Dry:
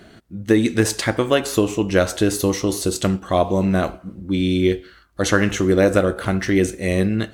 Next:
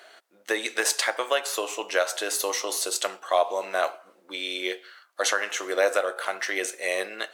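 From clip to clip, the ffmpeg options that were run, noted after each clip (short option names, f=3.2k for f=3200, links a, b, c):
-af "highpass=f=570:w=0.5412,highpass=f=570:w=1.3066,alimiter=limit=-10.5dB:level=0:latency=1:release=441"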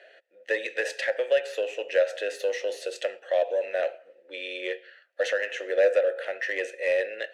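-filter_complex "[0:a]asplit=3[a][b][c];[a]bandpass=f=530:t=q:w=8,volume=0dB[d];[b]bandpass=f=1.84k:t=q:w=8,volume=-6dB[e];[c]bandpass=f=2.48k:t=q:w=8,volume=-9dB[f];[d][e][f]amix=inputs=3:normalize=0,asplit=2[g][h];[h]asoftclip=type=tanh:threshold=-34.5dB,volume=-3.5dB[i];[g][i]amix=inputs=2:normalize=0,volume=5.5dB"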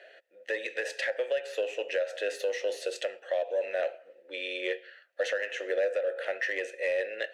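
-af "alimiter=limit=-21dB:level=0:latency=1:release=302"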